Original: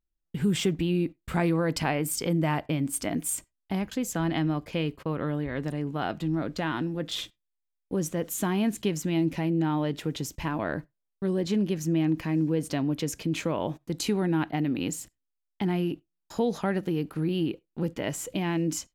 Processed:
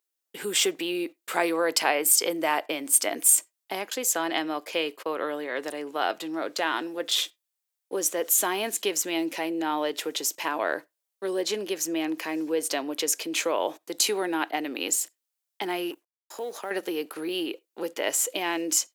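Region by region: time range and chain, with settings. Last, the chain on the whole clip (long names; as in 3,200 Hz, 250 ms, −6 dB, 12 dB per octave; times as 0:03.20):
0:15.91–0:16.71: mu-law and A-law mismatch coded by A + downward compressor 3 to 1, threshold −33 dBFS + parametric band 4,400 Hz −6 dB 1.3 octaves
whole clip: high-pass filter 390 Hz 24 dB per octave; high-shelf EQ 4,500 Hz +9 dB; level +4.5 dB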